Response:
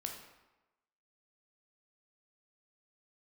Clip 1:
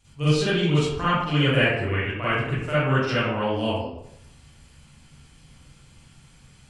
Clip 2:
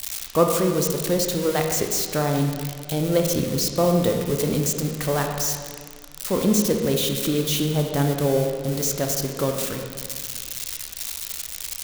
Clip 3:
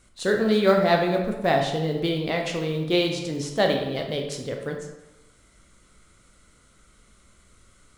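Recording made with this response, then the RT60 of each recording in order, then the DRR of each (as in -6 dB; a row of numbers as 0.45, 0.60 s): 3; 0.75, 1.9, 1.1 s; -12.5, 3.0, 2.0 dB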